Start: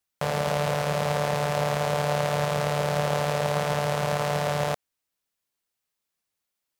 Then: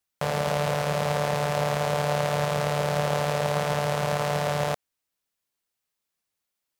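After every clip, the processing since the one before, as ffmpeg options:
-af anull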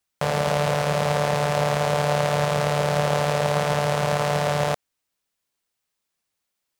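-af "equalizer=f=13k:w=2.7:g=-5.5,volume=3.5dB"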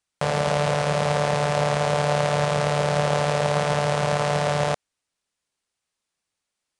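-af "aresample=22050,aresample=44100"

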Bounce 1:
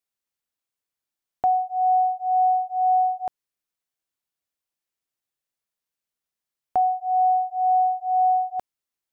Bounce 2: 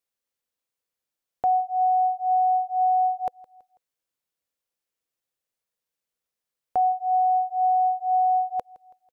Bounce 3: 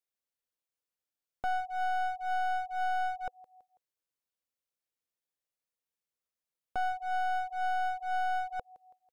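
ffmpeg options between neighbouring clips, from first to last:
-af "equalizer=f=500:t=o:w=0.29:g=8,alimiter=limit=-16.5dB:level=0:latency=1,aecho=1:1:164|328|492:0.0794|0.0357|0.0161"
-af "aeval=exprs='clip(val(0),-1,0.0251)':c=same,volume=-7dB"

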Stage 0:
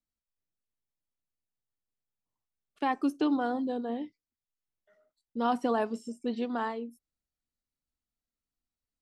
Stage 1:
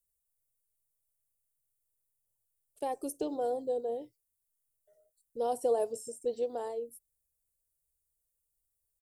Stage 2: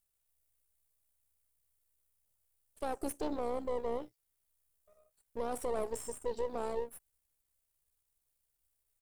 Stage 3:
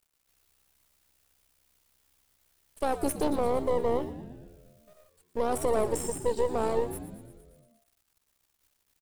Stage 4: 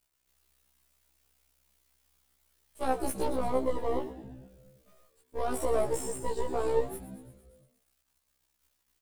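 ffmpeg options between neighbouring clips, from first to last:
-af "firequalizer=gain_entry='entry(140,0);entry(200,-22);entry(480,2);entry(1200,-23);entry(8900,12)':delay=0.05:min_phase=1,volume=3dB"
-af "aeval=exprs='if(lt(val(0),0),0.251*val(0),val(0))':c=same,alimiter=level_in=6dB:limit=-24dB:level=0:latency=1:release=27,volume=-6dB,tremolo=f=65:d=0.4,volume=6dB"
-filter_complex "[0:a]acrusher=bits=11:mix=0:aa=0.000001,asplit=2[a][b];[b]asplit=8[c][d][e][f][g][h][i][j];[c]adelay=116,afreqshift=-86,volume=-13dB[k];[d]adelay=232,afreqshift=-172,volume=-16.7dB[l];[e]adelay=348,afreqshift=-258,volume=-20.5dB[m];[f]adelay=464,afreqshift=-344,volume=-24.2dB[n];[g]adelay=580,afreqshift=-430,volume=-28dB[o];[h]adelay=696,afreqshift=-516,volume=-31.7dB[p];[i]adelay=812,afreqshift=-602,volume=-35.5dB[q];[j]adelay=928,afreqshift=-688,volume=-39.2dB[r];[k][l][m][n][o][p][q][r]amix=inputs=8:normalize=0[s];[a][s]amix=inputs=2:normalize=0,volume=8.5dB"
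-af "afftfilt=real='re*1.73*eq(mod(b,3),0)':imag='im*1.73*eq(mod(b,3),0)':win_size=2048:overlap=0.75"

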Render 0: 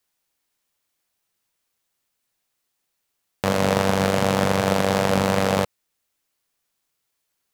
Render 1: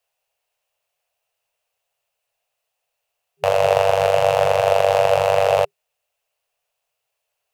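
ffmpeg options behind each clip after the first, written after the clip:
-af "equalizer=f=650:w=1.5:g=14,afftfilt=real='re*(1-between(b*sr/4096,160,400))':imag='im*(1-between(b*sr/4096,160,400))':win_size=4096:overlap=0.75,equalizer=f=2.7k:w=4.5:g=10.5,volume=-4dB"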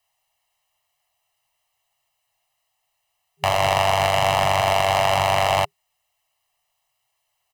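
-filter_complex "[0:a]aecho=1:1:1:0.85,acrossover=split=1000[a][b];[a]asoftclip=type=tanh:threshold=-21dB[c];[c][b]amix=inputs=2:normalize=0,acrusher=bits=8:mode=log:mix=0:aa=0.000001,volume=2dB"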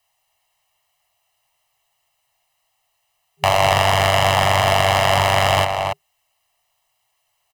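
-filter_complex "[0:a]asplit=2[a][b];[b]adelay=279.9,volume=-6dB,highshelf=f=4k:g=-6.3[c];[a][c]amix=inputs=2:normalize=0,volume=4dB"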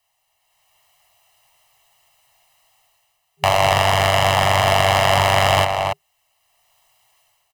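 -af "dynaudnorm=f=400:g=3:m=10.5dB,volume=-1dB"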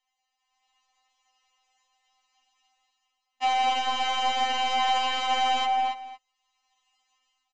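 -af "aecho=1:1:227:0.2,aresample=16000,aresample=44100,afftfilt=real='re*3.46*eq(mod(b,12),0)':imag='im*3.46*eq(mod(b,12),0)':win_size=2048:overlap=0.75,volume=-6.5dB"

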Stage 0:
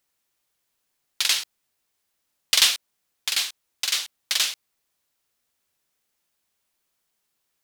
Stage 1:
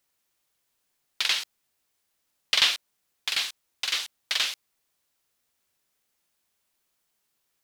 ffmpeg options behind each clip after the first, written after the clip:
-filter_complex "[0:a]acrossover=split=4500[a][b];[b]acompressor=threshold=-36dB:ratio=4:attack=1:release=60[c];[a][c]amix=inputs=2:normalize=0"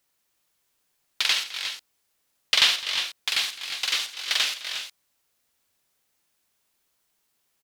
-af "aecho=1:1:71|210|336|358:0.299|0.119|0.251|0.316,volume=2dB"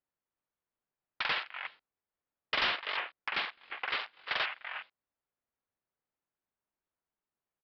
-af "lowpass=1.5k,afwtdn=0.00794,aresample=11025,asoftclip=type=hard:threshold=-29.5dB,aresample=44100,volume=4dB"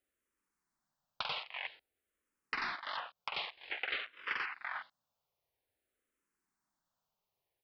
-filter_complex "[0:a]acompressor=threshold=-42dB:ratio=4,asplit=2[a][b];[b]afreqshift=-0.51[c];[a][c]amix=inputs=2:normalize=1,volume=8dB"

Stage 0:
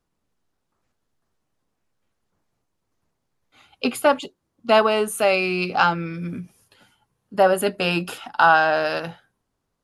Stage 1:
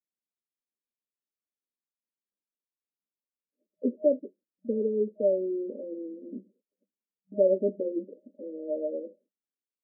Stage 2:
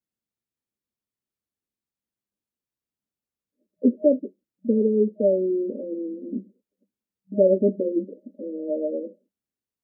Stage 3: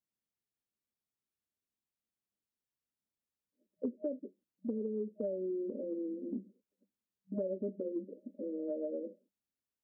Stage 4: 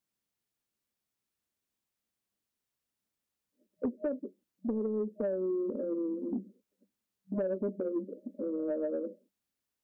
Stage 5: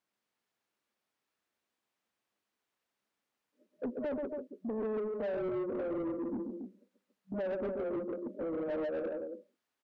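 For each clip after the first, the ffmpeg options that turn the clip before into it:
-af "agate=range=-23dB:threshold=-51dB:ratio=16:detection=peak,afftfilt=real='re*between(b*sr/4096,190,620)':imag='im*between(b*sr/4096,190,620)':win_size=4096:overlap=0.75,volume=-4dB"
-af "equalizer=f=100:w=0.32:g=15"
-af "acompressor=threshold=-29dB:ratio=6,volume=-5.5dB"
-af "asoftclip=type=tanh:threshold=-29dB,volume=5.5dB"
-filter_complex "[0:a]aecho=1:1:134.1|279.9:0.447|0.316,asplit=2[a][b];[b]highpass=f=720:p=1,volume=23dB,asoftclip=type=tanh:threshold=-21dB[c];[a][c]amix=inputs=2:normalize=0,lowpass=f=1.4k:p=1,volume=-6dB,volume=-7dB"

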